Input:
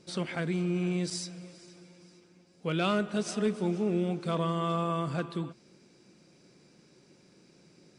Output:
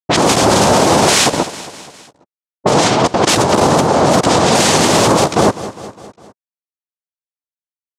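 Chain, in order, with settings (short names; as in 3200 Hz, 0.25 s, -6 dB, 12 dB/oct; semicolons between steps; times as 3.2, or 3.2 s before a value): level-crossing sampler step -32 dBFS; chorus voices 2, 0.26 Hz, delay 14 ms, depth 1.2 ms; negative-ratio compressor -40 dBFS, ratio -1; noise vocoder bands 2; low-pass opened by the level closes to 550 Hz, open at -38 dBFS; on a send: feedback echo 0.203 s, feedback 56%, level -21 dB; on the sum: maximiser +35.5 dB; gain -1 dB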